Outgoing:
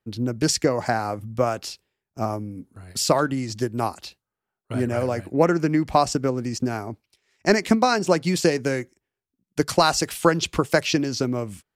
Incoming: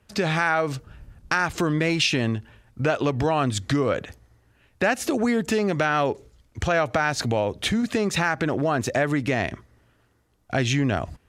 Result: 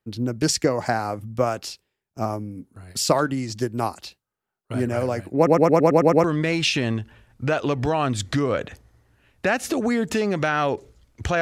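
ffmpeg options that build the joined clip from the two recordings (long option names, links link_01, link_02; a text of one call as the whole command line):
ffmpeg -i cue0.wav -i cue1.wav -filter_complex "[0:a]apad=whole_dur=11.41,atrim=end=11.41,asplit=8[link_01][link_02][link_03][link_04][link_05][link_06][link_07][link_08];[link_01]atrim=end=5.472[link_09];[link_02]atrim=start=5.358:end=5.472[link_10];[link_03]atrim=start=5.358:end=5.472[link_11];[link_04]atrim=start=5.358:end=5.472[link_12];[link_05]atrim=start=5.358:end=5.472[link_13];[link_06]atrim=start=5.358:end=5.472[link_14];[link_07]atrim=start=5.358:end=5.472[link_15];[link_08]atrim=start=5.358:end=5.472[link_16];[1:a]atrim=start=1.608:end=6.78[link_17];[link_09][link_10]acrossfade=duration=0.004:curve1=hsin:curve2=hsin[link_18];[link_18][link_11]acrossfade=duration=0.004:curve1=hsin:curve2=hsin[link_19];[link_19][link_12]acrossfade=duration=0.004:curve1=hsin:curve2=hsin[link_20];[link_20][link_13]acrossfade=duration=0.004:curve1=hsin:curve2=hsin[link_21];[link_21][link_14]acrossfade=duration=0.004:curve1=hsin:curve2=hsin[link_22];[link_22][link_15]acrossfade=duration=0.004:curve1=hsin:curve2=hsin[link_23];[link_23][link_16]acrossfade=duration=0.004:curve1=hsin:curve2=hsin[link_24];[link_24][link_17]acrossfade=duration=0.004:curve1=hsin:curve2=hsin" out.wav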